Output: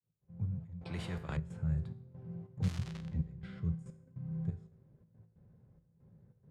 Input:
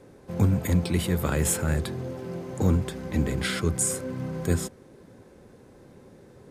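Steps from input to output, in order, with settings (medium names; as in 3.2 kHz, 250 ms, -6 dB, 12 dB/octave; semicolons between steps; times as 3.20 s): fade-in on the opening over 1.04 s; trance gate "x.xxxx..xxx." 140 bpm -12 dB; gain riding 2 s; FFT filter 160 Hz 0 dB, 280 Hz -22 dB, 610 Hz -19 dB, 3.3 kHz -26 dB; 2.62–3.12 s: crackle 320 per s -> 71 per s -26 dBFS; level-controlled noise filter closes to 2.9 kHz, open at -14.5 dBFS; bass shelf 64 Hz -12 dB; 3.90–4.31 s: level held to a coarse grid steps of 19 dB; feedback comb 55 Hz, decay 0.57 s, harmonics all, mix 60%; 0.81–1.37 s: spectrum-flattening compressor 2:1; trim +2 dB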